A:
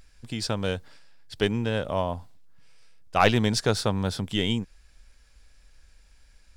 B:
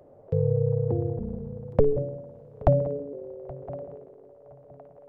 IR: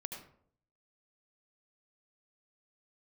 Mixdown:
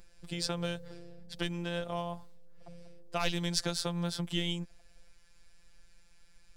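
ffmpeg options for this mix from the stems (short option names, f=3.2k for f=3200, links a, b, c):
-filter_complex "[0:a]volume=0dB[a];[1:a]alimiter=limit=-16dB:level=0:latency=1:release=276,volume=-19dB[b];[a][b]amix=inputs=2:normalize=0,acrossover=split=120|3000[c][d][e];[d]acompressor=threshold=-28dB:ratio=6[f];[c][f][e]amix=inputs=3:normalize=0,afftfilt=real='hypot(re,im)*cos(PI*b)':imag='0':win_size=1024:overlap=0.75"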